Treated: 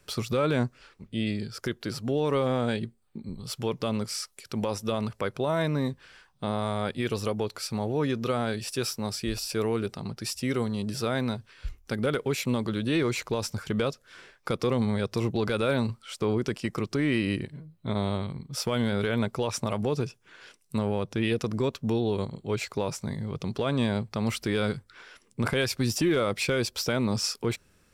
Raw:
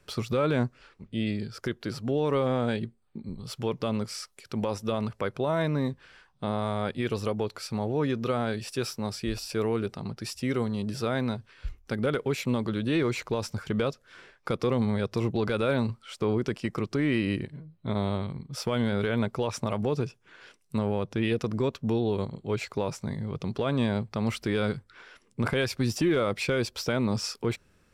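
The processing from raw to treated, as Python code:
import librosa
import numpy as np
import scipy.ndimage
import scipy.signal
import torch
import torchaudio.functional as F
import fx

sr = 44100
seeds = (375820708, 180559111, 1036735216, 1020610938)

y = fx.high_shelf(x, sr, hz=4700.0, db=7.5)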